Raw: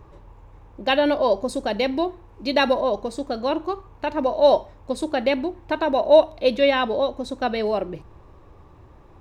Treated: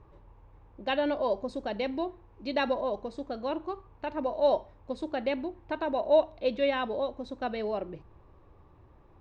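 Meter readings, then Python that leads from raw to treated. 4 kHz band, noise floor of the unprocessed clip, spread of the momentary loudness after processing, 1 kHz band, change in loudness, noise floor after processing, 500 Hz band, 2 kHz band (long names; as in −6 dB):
−11.5 dB, −49 dBFS, 12 LU, −9.0 dB, −9.0 dB, −58 dBFS, −9.0 dB, −10.0 dB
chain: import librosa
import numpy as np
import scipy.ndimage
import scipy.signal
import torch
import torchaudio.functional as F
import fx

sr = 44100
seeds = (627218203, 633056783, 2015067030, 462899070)

y = fx.air_absorb(x, sr, metres=130.0)
y = F.gain(torch.from_numpy(y), -8.5).numpy()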